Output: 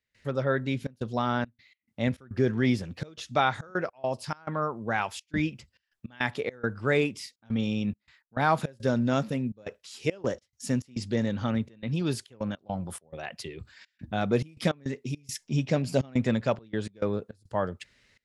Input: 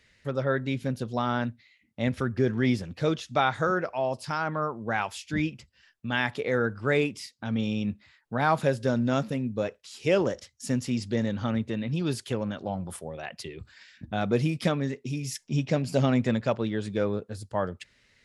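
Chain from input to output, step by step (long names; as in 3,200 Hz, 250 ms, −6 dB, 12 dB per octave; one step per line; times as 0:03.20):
gate pattern ".xxxxx.xxx.x.xx" 104 BPM −24 dB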